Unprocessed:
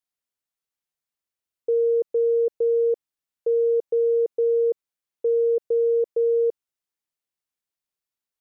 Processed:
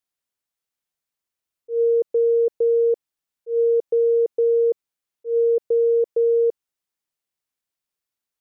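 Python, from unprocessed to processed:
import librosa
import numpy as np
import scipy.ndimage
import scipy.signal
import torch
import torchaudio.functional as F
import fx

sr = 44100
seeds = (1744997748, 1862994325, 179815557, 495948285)

y = fx.auto_swell(x, sr, attack_ms=134.0)
y = F.gain(torch.from_numpy(y), 2.5).numpy()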